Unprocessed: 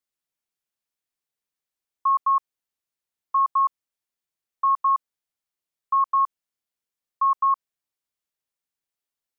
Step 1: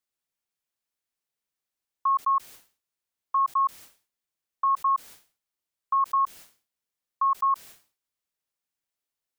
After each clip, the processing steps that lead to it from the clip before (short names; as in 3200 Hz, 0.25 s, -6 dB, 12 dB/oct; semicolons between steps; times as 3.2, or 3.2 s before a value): dynamic EQ 1100 Hz, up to -3 dB, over -32 dBFS; sustainer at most 150 dB/s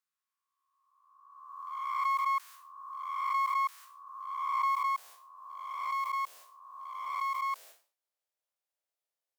spectral swells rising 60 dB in 1.46 s; one-sided clip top -34.5 dBFS, bottom -16.5 dBFS; high-pass sweep 1200 Hz -> 570 Hz, 4.24–5.36; gain -8.5 dB